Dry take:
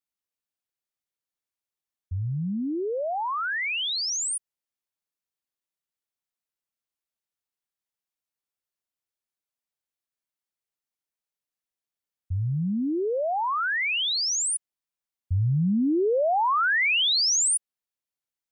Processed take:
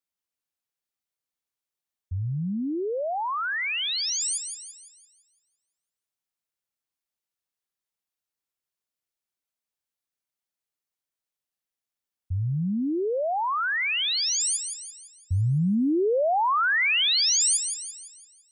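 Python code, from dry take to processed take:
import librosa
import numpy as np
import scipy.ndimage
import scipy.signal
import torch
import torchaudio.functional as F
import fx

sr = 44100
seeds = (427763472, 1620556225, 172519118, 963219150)

y = fx.echo_wet_highpass(x, sr, ms=169, feedback_pct=46, hz=3000.0, wet_db=-7.5)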